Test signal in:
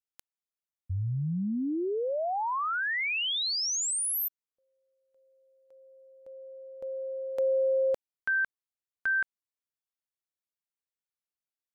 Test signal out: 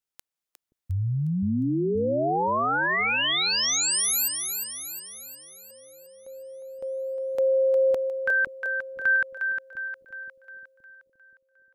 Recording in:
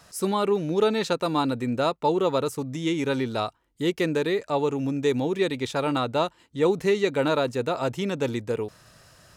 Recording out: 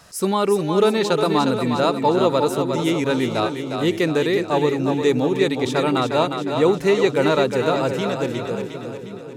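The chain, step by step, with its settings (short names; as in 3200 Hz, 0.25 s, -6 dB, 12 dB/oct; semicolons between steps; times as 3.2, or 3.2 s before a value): ending faded out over 1.64 s; split-band echo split 390 Hz, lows 0.525 s, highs 0.357 s, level -6 dB; gain +4.5 dB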